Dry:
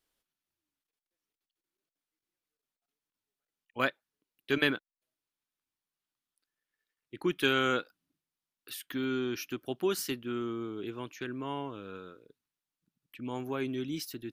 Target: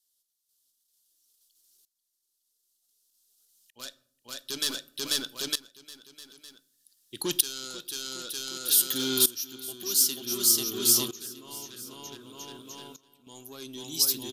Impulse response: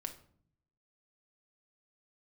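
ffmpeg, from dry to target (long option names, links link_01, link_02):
-filter_complex "[0:a]asoftclip=type=tanh:threshold=-27dB,aexciter=amount=14.5:drive=4.5:freq=3400,asettb=1/sr,asplit=3[link_01][link_02][link_03];[link_01]atrim=end=11.664[link_04];[link_02]atrim=start=11.66:end=13.27,asetpts=PTS-STARTPTS,afade=type=in:duration=0.004:curve=qsin,afade=type=out:start_time=1.606:duration=0.004:curve=qsin,acompressor=threshold=-48dB:ratio=6[link_05];[link_03]atrim=start=13.266[link_06];[link_04][link_05]acrossfade=duration=0.004:curve1=hsin:curve2=qsin[link_07];[link_07][link_06]acrossfade=duration=0.004:curve1=qsin:curve2=hsin,aecho=1:1:490|906.5|1261|1561|1817:0.631|0.398|0.251|0.158|0.1,asplit=2[link_08][link_09];[1:a]atrim=start_sample=2205[link_10];[link_09][link_10]afir=irnorm=-1:irlink=0,volume=-4.5dB[link_11];[link_08][link_11]amix=inputs=2:normalize=0,aresample=32000,aresample=44100,aeval=exprs='val(0)*pow(10,-19*if(lt(mod(-0.54*n/s,1),2*abs(-0.54)/1000),1-mod(-0.54*n/s,1)/(2*abs(-0.54)/1000),(mod(-0.54*n/s,1)-2*abs(-0.54)/1000)/(1-2*abs(-0.54)/1000))/20)':channel_layout=same"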